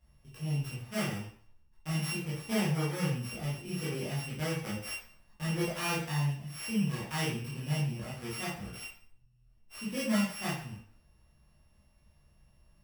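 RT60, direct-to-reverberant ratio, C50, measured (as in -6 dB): 0.50 s, -9.0 dB, 2.5 dB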